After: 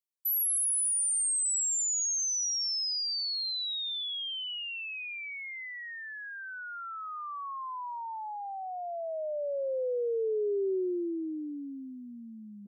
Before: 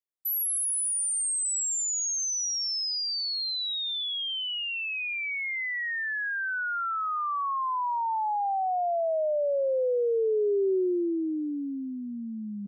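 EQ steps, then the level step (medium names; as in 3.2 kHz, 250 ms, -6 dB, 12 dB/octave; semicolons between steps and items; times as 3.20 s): high-pass 370 Hz 12 dB/octave; peaking EQ 760 Hz -7.5 dB 0.92 oct; peaking EQ 1.7 kHz -10 dB 1.5 oct; 0.0 dB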